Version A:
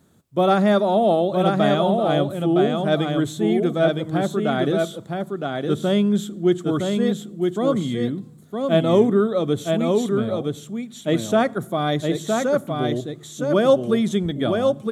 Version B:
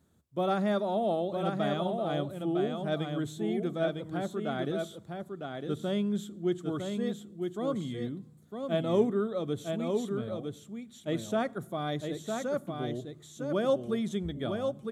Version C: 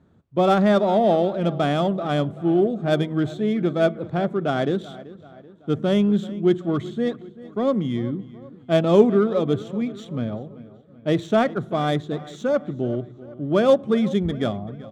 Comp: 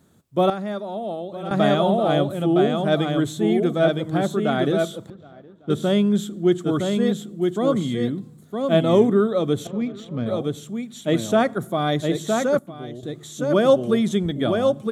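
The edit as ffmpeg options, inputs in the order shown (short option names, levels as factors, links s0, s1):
-filter_complex "[1:a]asplit=2[s0][s1];[2:a]asplit=2[s2][s3];[0:a]asplit=5[s4][s5][s6][s7][s8];[s4]atrim=end=0.502[s9];[s0]atrim=start=0.498:end=1.512[s10];[s5]atrim=start=1.508:end=5.102[s11];[s2]atrim=start=5.098:end=5.702[s12];[s6]atrim=start=5.698:end=9.672[s13];[s3]atrim=start=9.668:end=10.262[s14];[s7]atrim=start=10.258:end=12.592[s15];[s1]atrim=start=12.588:end=13.032[s16];[s8]atrim=start=13.028[s17];[s9][s10]acrossfade=d=0.004:c1=hsin:c2=hsin[s18];[s18][s11]acrossfade=d=0.004:c1=hsin:c2=hsin[s19];[s19][s12]acrossfade=d=0.004:c1=hsin:c2=hsin[s20];[s20][s13]acrossfade=d=0.004:c1=hsin:c2=hsin[s21];[s21][s14]acrossfade=d=0.004:c1=hsin:c2=hsin[s22];[s22][s15]acrossfade=d=0.004:c1=hsin:c2=hsin[s23];[s23][s16]acrossfade=d=0.004:c1=hsin:c2=hsin[s24];[s24][s17]acrossfade=d=0.004:c1=hsin:c2=hsin"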